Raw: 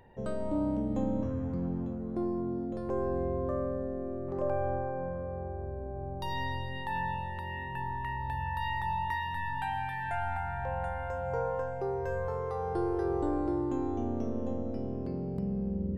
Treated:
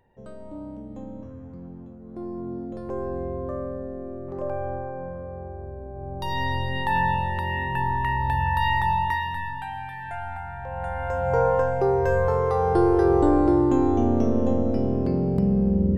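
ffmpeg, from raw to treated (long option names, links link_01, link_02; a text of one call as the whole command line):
ffmpeg -i in.wav -af "volume=23dB,afade=type=in:start_time=2:duration=0.53:silence=0.375837,afade=type=in:start_time=5.94:duration=0.89:silence=0.334965,afade=type=out:start_time=8.75:duration=0.89:silence=0.281838,afade=type=in:start_time=10.69:duration=0.77:silence=0.251189" out.wav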